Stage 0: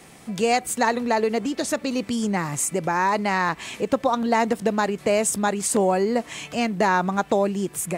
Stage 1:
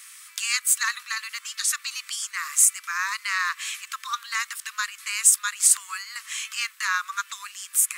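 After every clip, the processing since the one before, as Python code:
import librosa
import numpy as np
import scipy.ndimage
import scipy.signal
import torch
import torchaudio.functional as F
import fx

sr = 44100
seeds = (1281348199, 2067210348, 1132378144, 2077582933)

y = scipy.signal.sosfilt(scipy.signal.butter(16, 1100.0, 'highpass', fs=sr, output='sos'), x)
y = fx.high_shelf(y, sr, hz=5300.0, db=11.0)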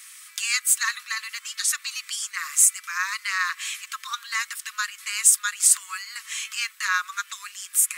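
y = scipy.signal.sosfilt(scipy.signal.butter(2, 1000.0, 'highpass', fs=sr, output='sos'), x)
y = y + 0.38 * np.pad(y, (int(5.5 * sr / 1000.0), 0))[:len(y)]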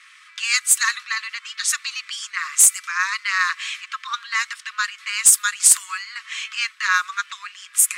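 y = 10.0 ** (-8.0 / 20.0) * (np.abs((x / 10.0 ** (-8.0 / 20.0) + 3.0) % 4.0 - 2.0) - 1.0)
y = fx.env_lowpass(y, sr, base_hz=2600.0, full_db=-16.0)
y = F.gain(torch.from_numpy(y), 5.0).numpy()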